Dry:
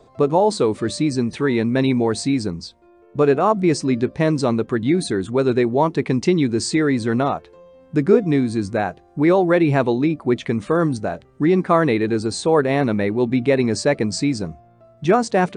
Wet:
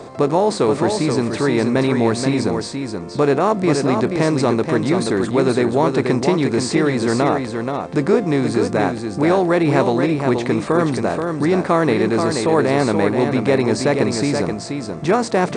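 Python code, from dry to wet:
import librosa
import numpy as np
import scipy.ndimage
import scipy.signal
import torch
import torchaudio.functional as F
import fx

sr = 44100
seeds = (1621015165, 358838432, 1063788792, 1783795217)

p1 = fx.bin_compress(x, sr, power=0.6)
p2 = p1 + fx.echo_single(p1, sr, ms=479, db=-5.5, dry=0)
y = F.gain(torch.from_numpy(p2), -3.0).numpy()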